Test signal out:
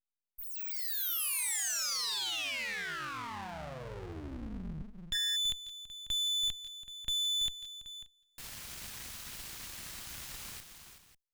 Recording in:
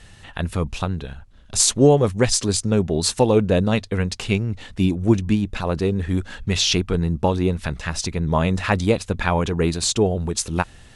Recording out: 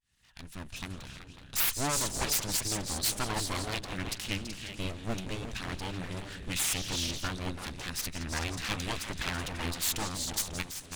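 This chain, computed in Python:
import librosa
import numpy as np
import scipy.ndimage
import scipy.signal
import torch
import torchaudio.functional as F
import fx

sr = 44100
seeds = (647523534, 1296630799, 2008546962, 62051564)

p1 = fx.fade_in_head(x, sr, length_s=1.03)
p2 = 10.0 ** (-17.0 / 20.0) * np.tanh(p1 / 10.0 ** (-17.0 / 20.0))
p3 = p1 + (p2 * 10.0 ** (-9.0 / 20.0))
p4 = fx.low_shelf(p3, sr, hz=290.0, db=3.5)
p5 = p4 + fx.echo_multitap(p4, sr, ms=(165, 173, 332, 378, 544), db=(-18.0, -18.0, -11.5, -11.0, -16.0), dry=0)
p6 = np.abs(p5)
y = fx.tone_stack(p6, sr, knobs='5-5-5')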